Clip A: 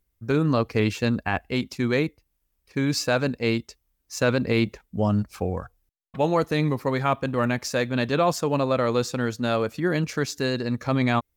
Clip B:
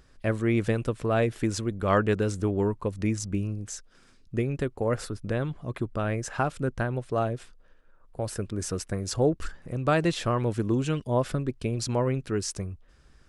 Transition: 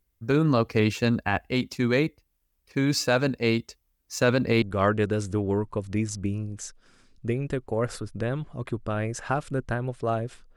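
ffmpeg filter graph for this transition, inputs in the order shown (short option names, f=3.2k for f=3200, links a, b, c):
-filter_complex "[0:a]apad=whole_dur=10.56,atrim=end=10.56,atrim=end=4.622[a];[1:a]atrim=start=1.708:end=7.65[b];[a][b]acrossfade=d=0.004:c1=hsin:c2=hsin"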